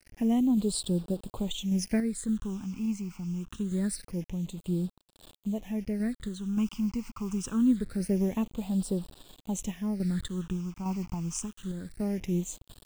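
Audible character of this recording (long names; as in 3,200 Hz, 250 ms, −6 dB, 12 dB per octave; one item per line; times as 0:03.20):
a quantiser's noise floor 8 bits, dither none
phaser sweep stages 8, 0.25 Hz, lowest notch 500–2,000 Hz
sample-and-hold tremolo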